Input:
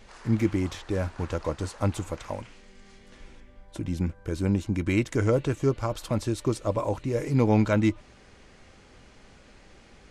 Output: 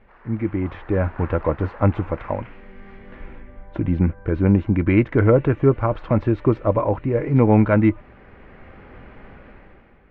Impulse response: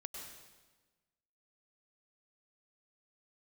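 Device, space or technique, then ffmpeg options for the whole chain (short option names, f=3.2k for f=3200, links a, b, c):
action camera in a waterproof case: -af "lowpass=f=2.2k:w=0.5412,lowpass=f=2.2k:w=1.3066,dynaudnorm=f=120:g=11:m=13dB,volume=-2dB" -ar 48000 -c:a aac -b:a 128k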